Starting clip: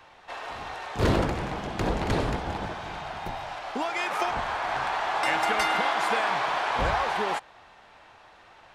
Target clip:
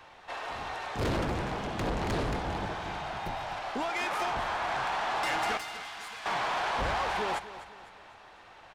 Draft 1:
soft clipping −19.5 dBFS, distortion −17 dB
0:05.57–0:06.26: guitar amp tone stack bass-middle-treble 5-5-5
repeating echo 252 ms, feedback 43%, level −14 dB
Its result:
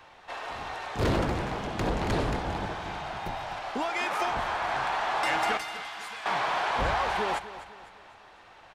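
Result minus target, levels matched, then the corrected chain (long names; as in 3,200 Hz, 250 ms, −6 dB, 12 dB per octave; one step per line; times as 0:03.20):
soft clipping: distortion −7 dB
soft clipping −26.5 dBFS, distortion −10 dB
0:05.57–0:06.26: guitar amp tone stack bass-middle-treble 5-5-5
repeating echo 252 ms, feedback 43%, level −14 dB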